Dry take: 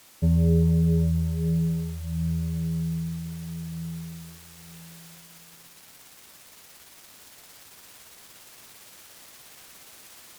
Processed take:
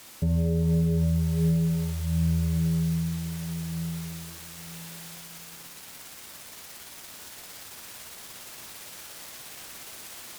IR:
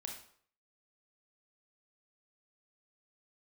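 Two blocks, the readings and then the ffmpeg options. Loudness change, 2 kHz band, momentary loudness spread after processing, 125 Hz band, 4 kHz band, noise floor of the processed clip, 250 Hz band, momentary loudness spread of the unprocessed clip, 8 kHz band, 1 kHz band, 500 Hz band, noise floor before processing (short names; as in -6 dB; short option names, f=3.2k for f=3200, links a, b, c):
-2.5 dB, +5.5 dB, 17 LU, -0.5 dB, +5.5 dB, -46 dBFS, -0.5 dB, 25 LU, +5.5 dB, +5.0 dB, -1.0 dB, -51 dBFS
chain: -filter_complex "[0:a]asplit=2[a][b];[1:a]atrim=start_sample=2205[c];[b][c]afir=irnorm=-1:irlink=0,volume=3dB[d];[a][d]amix=inputs=2:normalize=0,alimiter=limit=-17dB:level=0:latency=1:release=270"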